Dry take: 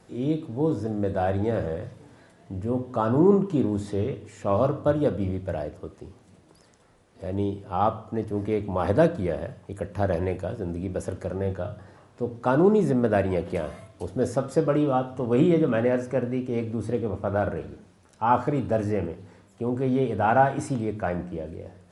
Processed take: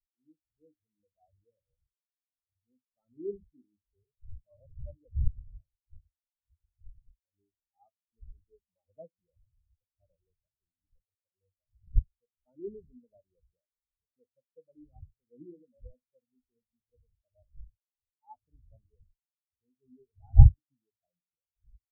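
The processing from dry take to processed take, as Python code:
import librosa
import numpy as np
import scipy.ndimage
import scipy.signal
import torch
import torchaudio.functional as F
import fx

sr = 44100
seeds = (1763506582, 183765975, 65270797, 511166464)

y = fx.dmg_wind(x, sr, seeds[0], corner_hz=100.0, level_db=-25.0)
y = fx.spectral_expand(y, sr, expansion=4.0)
y = y * librosa.db_to_amplitude(-2.0)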